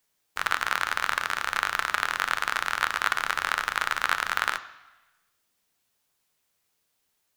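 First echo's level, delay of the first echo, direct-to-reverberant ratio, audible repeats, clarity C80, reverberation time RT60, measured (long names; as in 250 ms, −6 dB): no echo audible, no echo audible, 10.0 dB, no echo audible, 17.0 dB, 1.1 s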